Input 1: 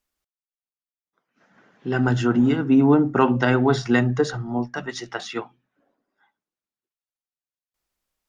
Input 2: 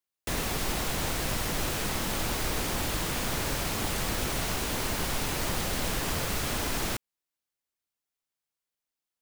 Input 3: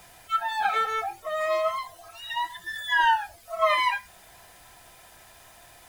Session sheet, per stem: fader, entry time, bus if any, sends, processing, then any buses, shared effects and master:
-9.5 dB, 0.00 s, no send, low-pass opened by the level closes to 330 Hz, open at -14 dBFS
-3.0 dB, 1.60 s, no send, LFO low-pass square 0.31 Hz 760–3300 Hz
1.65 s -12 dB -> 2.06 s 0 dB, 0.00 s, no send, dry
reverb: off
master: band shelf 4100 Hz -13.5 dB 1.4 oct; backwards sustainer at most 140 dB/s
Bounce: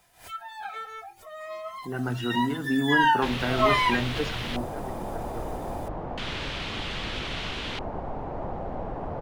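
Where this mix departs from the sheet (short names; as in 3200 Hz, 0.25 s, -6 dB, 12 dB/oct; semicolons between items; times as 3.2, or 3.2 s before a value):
stem 2: entry 1.60 s -> 2.95 s; master: missing band shelf 4100 Hz -13.5 dB 1.4 oct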